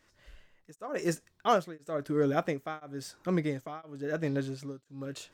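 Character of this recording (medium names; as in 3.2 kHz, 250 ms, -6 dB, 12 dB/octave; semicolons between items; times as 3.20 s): tremolo triangle 0.98 Hz, depth 100%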